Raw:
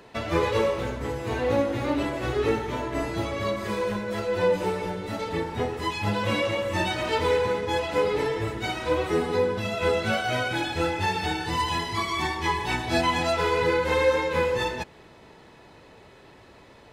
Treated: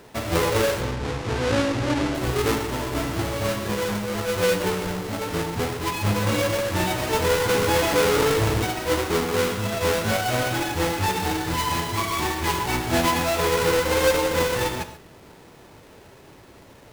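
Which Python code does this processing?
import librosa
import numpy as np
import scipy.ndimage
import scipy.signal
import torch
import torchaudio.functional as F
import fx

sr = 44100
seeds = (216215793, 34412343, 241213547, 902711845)

y = fx.halfwave_hold(x, sr)
y = fx.lowpass(y, sr, hz=6700.0, slope=12, at=(0.8, 2.15))
y = fx.rev_gated(y, sr, seeds[0], gate_ms=160, shape='flat', drr_db=8.0)
y = fx.env_flatten(y, sr, amount_pct=50, at=(7.48, 8.63), fade=0.02)
y = F.gain(torch.from_numpy(y), -2.5).numpy()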